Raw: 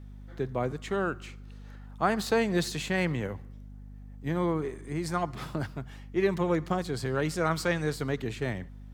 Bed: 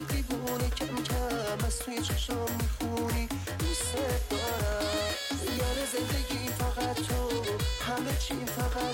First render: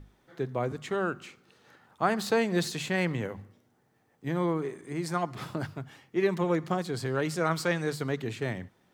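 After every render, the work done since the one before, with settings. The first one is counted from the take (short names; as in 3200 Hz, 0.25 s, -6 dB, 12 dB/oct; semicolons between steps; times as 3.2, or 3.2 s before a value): notches 50/100/150/200/250 Hz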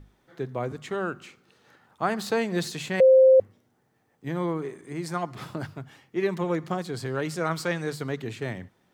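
3–3.4 bleep 524 Hz -11.5 dBFS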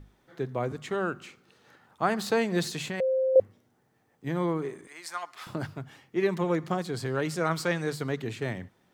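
2.83–3.36 compressor 2.5:1, threshold -30 dBFS; 4.87–5.47 HPF 1100 Hz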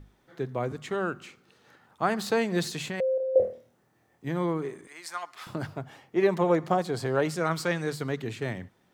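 3.15–4.26 flutter echo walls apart 4.4 m, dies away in 0.36 s; 5.66–7.31 bell 680 Hz +8 dB 1.3 oct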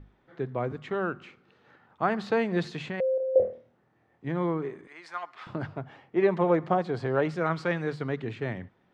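LPF 2800 Hz 12 dB/oct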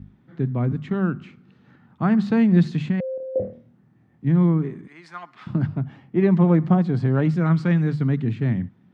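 HPF 84 Hz; resonant low shelf 320 Hz +13 dB, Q 1.5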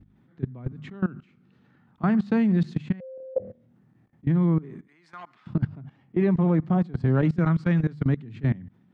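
level quantiser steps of 20 dB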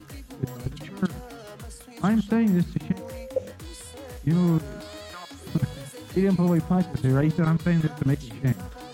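add bed -10 dB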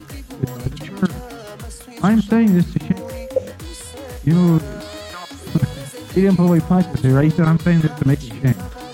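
gain +7.5 dB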